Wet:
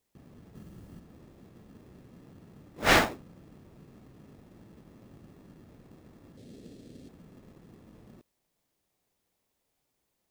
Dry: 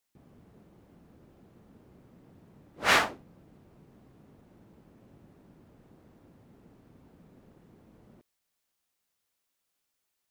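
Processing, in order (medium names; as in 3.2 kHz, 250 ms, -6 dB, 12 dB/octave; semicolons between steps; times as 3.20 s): 0.55–1.00 s: tone controls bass +8 dB, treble +10 dB; in parallel at -3.5 dB: sample-rate reducer 1.5 kHz, jitter 0%; 6.37–7.09 s: on the sum: graphic EQ 250/500/1000/4000/8000 Hz +5/+8/-11/+10/+8 dB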